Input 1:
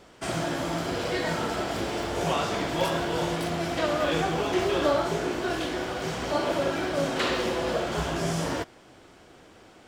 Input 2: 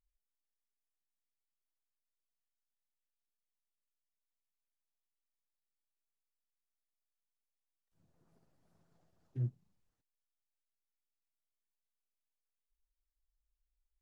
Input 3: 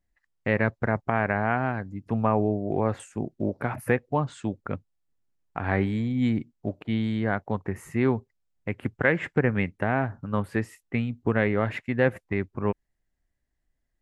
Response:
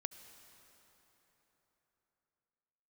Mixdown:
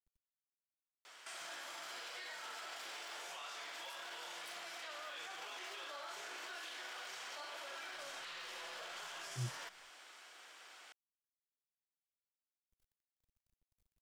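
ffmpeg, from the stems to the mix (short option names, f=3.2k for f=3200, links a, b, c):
-filter_complex "[0:a]highpass=1.3k,acompressor=threshold=-39dB:ratio=6,alimiter=level_in=16.5dB:limit=-24dB:level=0:latency=1:release=29,volume=-16.5dB,adelay=1050,volume=1dB[a];[1:a]equalizer=f=61:w=0.9:g=5.5,aecho=1:1:5.8:0.81,acrusher=bits=11:mix=0:aa=0.000001,volume=-9dB[b];[a][b]amix=inputs=2:normalize=0"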